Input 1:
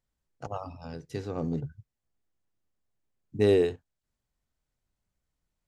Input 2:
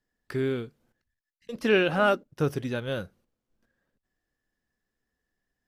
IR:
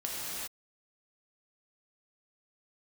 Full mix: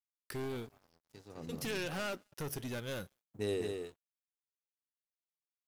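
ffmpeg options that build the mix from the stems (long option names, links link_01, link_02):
-filter_complex "[0:a]volume=-13.5dB,afade=type=in:start_time=1.02:duration=0.39:silence=0.334965,asplit=2[link_01][link_02];[link_02]volume=-5dB[link_03];[1:a]acompressor=threshold=-23dB:ratio=12,aeval=exprs='(tanh(31.6*val(0)+0.2)-tanh(0.2))/31.6':channel_layout=same,volume=-5dB,asplit=2[link_04][link_05];[link_05]volume=-23.5dB[link_06];[link_03][link_06]amix=inputs=2:normalize=0,aecho=0:1:206:1[link_07];[link_01][link_04][link_07]amix=inputs=3:normalize=0,aemphasis=mode=production:type=75kf,aeval=exprs='sgn(val(0))*max(abs(val(0))-0.00133,0)':channel_layout=same"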